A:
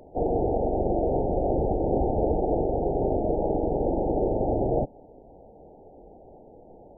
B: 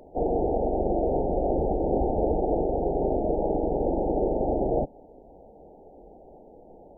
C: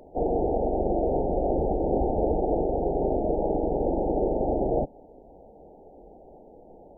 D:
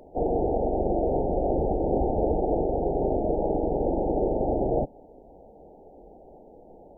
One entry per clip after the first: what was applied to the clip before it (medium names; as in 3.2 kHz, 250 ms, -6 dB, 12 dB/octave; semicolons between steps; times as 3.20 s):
peaking EQ 110 Hz -10.5 dB 0.44 oct
no audible change
dynamic bell 110 Hz, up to +4 dB, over -49 dBFS, Q 2.9